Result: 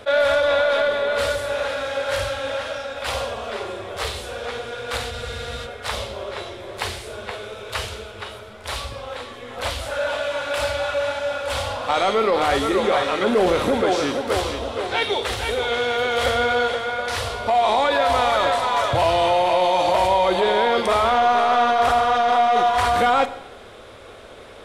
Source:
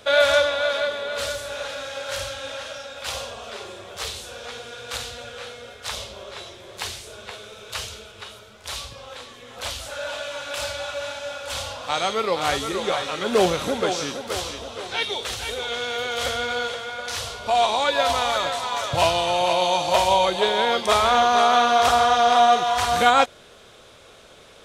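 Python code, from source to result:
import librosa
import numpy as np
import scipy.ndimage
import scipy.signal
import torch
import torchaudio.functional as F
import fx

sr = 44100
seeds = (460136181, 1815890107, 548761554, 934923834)

p1 = fx.over_compress(x, sr, threshold_db=-24.0, ratio=-1.0)
p2 = x + (p1 * librosa.db_to_amplitude(2.0))
p3 = fx.high_shelf(p2, sr, hz=2200.0, db=-10.5)
p4 = 10.0 ** (-9.5 / 20.0) * np.tanh(p3 / 10.0 ** (-9.5 / 20.0))
p5 = fx.graphic_eq_31(p4, sr, hz=(160, 2000, 6300, 10000), db=(-12, 3, -4, 3))
p6 = fx.rev_schroeder(p5, sr, rt60_s=0.87, comb_ms=32, drr_db=12.5)
p7 = fx.spec_freeze(p6, sr, seeds[0], at_s=5.14, hold_s=0.52)
y = fx.attack_slew(p7, sr, db_per_s=600.0)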